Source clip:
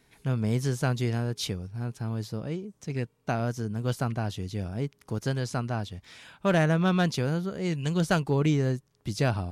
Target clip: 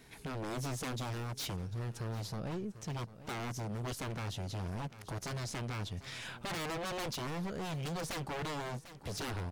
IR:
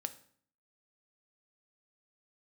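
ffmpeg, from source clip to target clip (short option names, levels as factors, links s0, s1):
-filter_complex "[0:a]aeval=exprs='if(lt(val(0),0),0.708*val(0),val(0))':c=same,asplit=2[s0][s1];[s1]acompressor=threshold=0.01:ratio=6,volume=0.841[s2];[s0][s2]amix=inputs=2:normalize=0,aeval=exprs='0.0355*(abs(mod(val(0)/0.0355+3,4)-2)-1)':c=same,aecho=1:1:746|1492:0.106|0.0265,alimiter=level_in=3.35:limit=0.0631:level=0:latency=1:release=112,volume=0.299,volume=1.19"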